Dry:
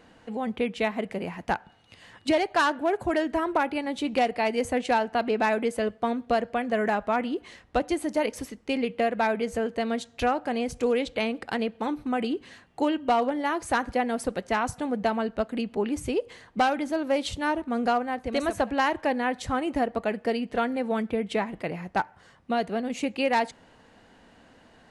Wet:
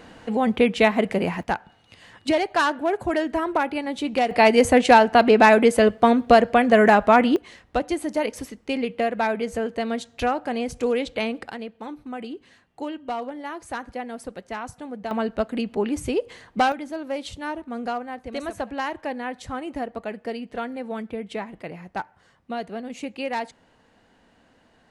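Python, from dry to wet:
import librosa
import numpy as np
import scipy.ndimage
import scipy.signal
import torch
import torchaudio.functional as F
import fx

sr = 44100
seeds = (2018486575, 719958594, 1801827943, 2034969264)

y = fx.gain(x, sr, db=fx.steps((0.0, 9.0), (1.43, 2.0), (4.31, 10.5), (7.36, 1.5), (11.51, -6.5), (15.11, 3.0), (16.72, -4.0)))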